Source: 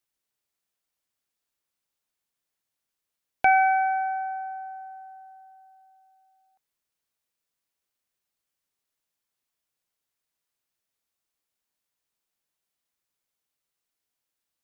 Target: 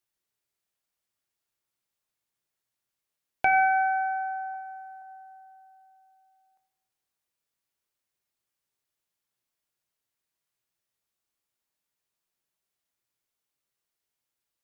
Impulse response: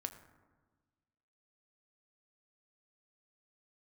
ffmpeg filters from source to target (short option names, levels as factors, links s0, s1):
-filter_complex "[0:a]asettb=1/sr,asplit=3[s0][s1][s2];[s0]atrim=end=4.514[s3];[s1]atrim=start=4.51:end=5.02,asetpts=PTS-STARTPTS,afade=t=in:d=0.004:c=qsin,afade=t=out:st=0.506:d=0.004:c=qsin,asplit=2[s4][s5];[s5]adelay=31,volume=0.562[s6];[s4][s6]amix=inputs=2:normalize=0,atrim=end_sample=22491[s7];[s2]atrim=start=5.016[s8];[s3][s7]acrossfade=d=0.004:c1=hsin:c2=qsin[s9];[s9][s8]acrossfade=d=0.004:c1=qsin:c2=hsin[s10];[1:a]atrim=start_sample=2205,asetrate=57330,aresample=44100[s11];[s10][s11]afir=irnorm=-1:irlink=0,volume=1.5"